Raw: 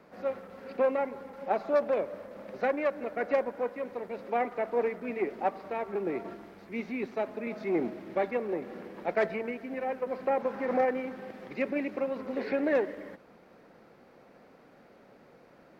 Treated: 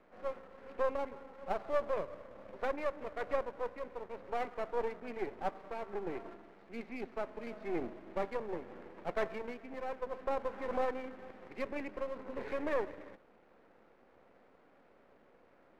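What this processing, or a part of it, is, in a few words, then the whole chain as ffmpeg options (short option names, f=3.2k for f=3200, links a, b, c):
crystal radio: -af "highpass=230,lowpass=2.6k,aeval=exprs='if(lt(val(0),0),0.251*val(0),val(0))':c=same,volume=-3.5dB"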